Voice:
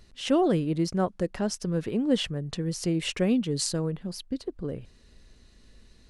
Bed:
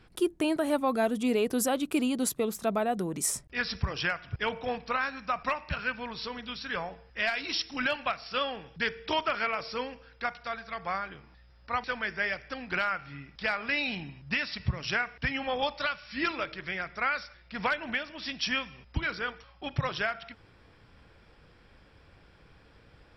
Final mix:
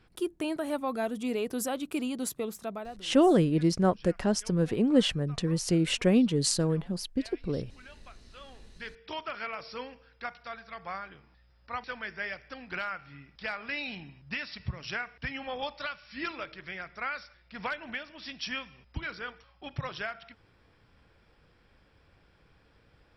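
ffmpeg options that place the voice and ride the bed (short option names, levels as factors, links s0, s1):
-filter_complex "[0:a]adelay=2850,volume=1.19[s0];[1:a]volume=4.22,afade=t=out:st=2.47:d=0.59:silence=0.125893,afade=t=in:st=8.32:d=1.36:silence=0.141254[s1];[s0][s1]amix=inputs=2:normalize=0"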